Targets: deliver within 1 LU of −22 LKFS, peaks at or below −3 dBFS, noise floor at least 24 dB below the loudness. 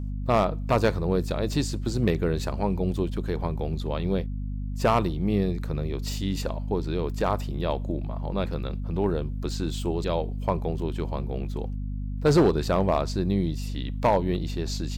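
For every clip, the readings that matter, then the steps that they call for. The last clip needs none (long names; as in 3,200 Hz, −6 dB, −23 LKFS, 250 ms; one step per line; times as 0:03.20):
share of clipped samples 0.3%; peaks flattened at −13.5 dBFS; mains hum 50 Hz; hum harmonics up to 250 Hz; level of the hum −28 dBFS; integrated loudness −27.0 LKFS; sample peak −13.5 dBFS; target loudness −22.0 LKFS
→ clipped peaks rebuilt −13.5 dBFS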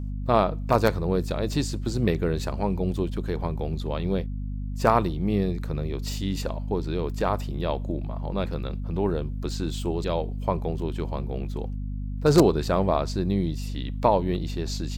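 share of clipped samples 0.0%; mains hum 50 Hz; hum harmonics up to 250 Hz; level of the hum −28 dBFS
→ hum removal 50 Hz, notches 5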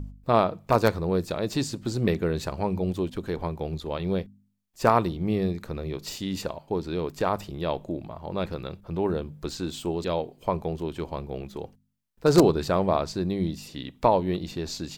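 mains hum none found; integrated loudness −27.5 LKFS; sample peak −4.5 dBFS; target loudness −22.0 LKFS
→ level +5.5 dB
brickwall limiter −3 dBFS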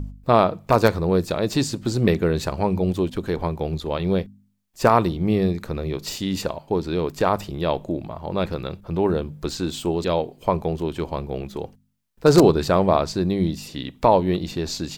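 integrated loudness −22.5 LKFS; sample peak −3.0 dBFS; background noise floor −57 dBFS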